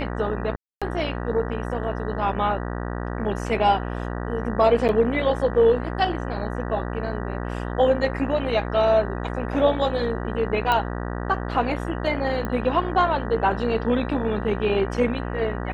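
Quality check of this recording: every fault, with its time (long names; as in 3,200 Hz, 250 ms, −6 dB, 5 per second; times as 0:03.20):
mains buzz 60 Hz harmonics 32 −29 dBFS
0:00.56–0:00.82: drop-out 256 ms
0:04.88–0:04.89: drop-out 9.1 ms
0:10.72: click −10 dBFS
0:12.45: click −16 dBFS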